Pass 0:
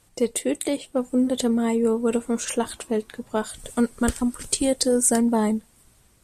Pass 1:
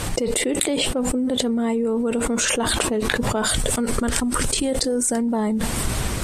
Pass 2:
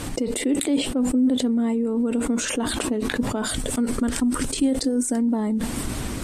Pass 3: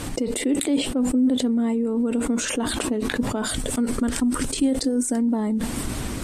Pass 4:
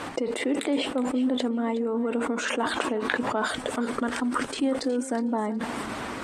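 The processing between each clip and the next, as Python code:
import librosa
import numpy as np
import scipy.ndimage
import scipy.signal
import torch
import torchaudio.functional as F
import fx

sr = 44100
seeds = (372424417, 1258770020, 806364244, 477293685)

y1 = fx.high_shelf(x, sr, hz=7000.0, db=-10.0)
y1 = fx.env_flatten(y1, sr, amount_pct=100)
y1 = y1 * librosa.db_to_amplitude(-4.5)
y2 = fx.peak_eq(y1, sr, hz=270.0, db=11.0, octaves=0.56)
y2 = y2 * librosa.db_to_amplitude(-6.0)
y3 = y2
y4 = fx.bandpass_q(y3, sr, hz=1100.0, q=0.82)
y4 = fx.echo_feedback(y4, sr, ms=367, feedback_pct=16, wet_db=-15.5)
y4 = y4 * librosa.db_to_amplitude(5.0)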